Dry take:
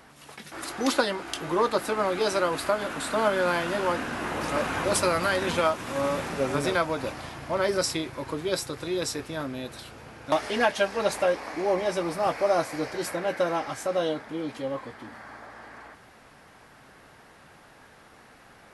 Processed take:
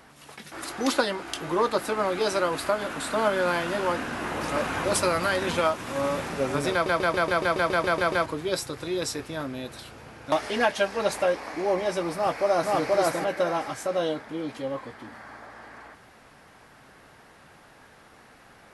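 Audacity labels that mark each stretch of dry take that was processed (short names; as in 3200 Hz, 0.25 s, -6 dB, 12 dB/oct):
6.720000	6.720000	stutter in place 0.14 s, 11 plays
12.150000	12.760000	echo throw 0.48 s, feedback 25%, level 0 dB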